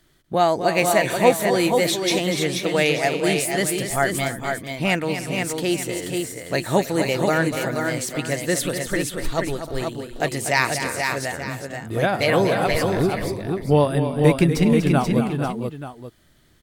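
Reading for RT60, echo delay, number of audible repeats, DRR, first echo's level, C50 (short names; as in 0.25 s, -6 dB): none, 0.243 s, 5, none, -9.5 dB, none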